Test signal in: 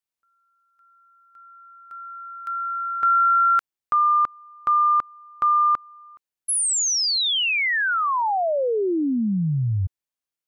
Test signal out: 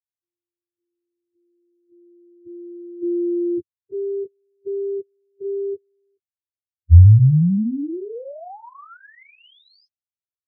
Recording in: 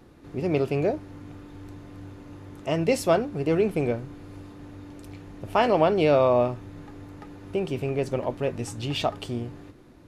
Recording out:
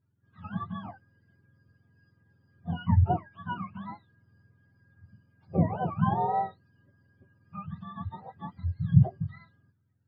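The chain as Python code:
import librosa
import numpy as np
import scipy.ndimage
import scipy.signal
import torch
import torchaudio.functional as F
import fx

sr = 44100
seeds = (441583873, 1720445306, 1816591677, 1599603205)

y = fx.octave_mirror(x, sr, pivot_hz=690.0)
y = fx.riaa(y, sr, side='playback')
y = fx.spectral_expand(y, sr, expansion=1.5)
y = F.gain(torch.from_numpy(y), -3.0).numpy()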